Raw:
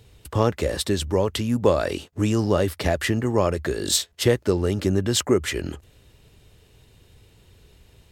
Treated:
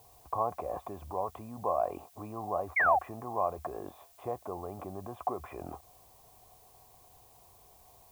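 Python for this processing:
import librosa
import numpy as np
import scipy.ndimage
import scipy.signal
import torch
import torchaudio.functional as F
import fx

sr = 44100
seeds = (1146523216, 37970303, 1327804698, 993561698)

p1 = fx.over_compress(x, sr, threshold_db=-31.0, ratio=-1.0)
p2 = x + (p1 * 10.0 ** (1.5 / 20.0))
p3 = fx.formant_cascade(p2, sr, vowel='a')
p4 = fx.spec_paint(p3, sr, seeds[0], shape='fall', start_s=2.76, length_s=0.23, low_hz=700.0, high_hz=2300.0, level_db=-28.0)
p5 = fx.dmg_noise_colour(p4, sr, seeds[1], colour='blue', level_db=-64.0)
y = p5 * 10.0 ** (2.5 / 20.0)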